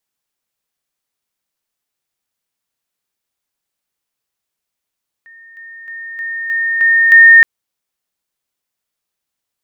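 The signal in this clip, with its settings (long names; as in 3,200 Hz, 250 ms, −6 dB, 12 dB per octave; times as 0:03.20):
level staircase 1,830 Hz −37.5 dBFS, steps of 6 dB, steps 7, 0.31 s 0.00 s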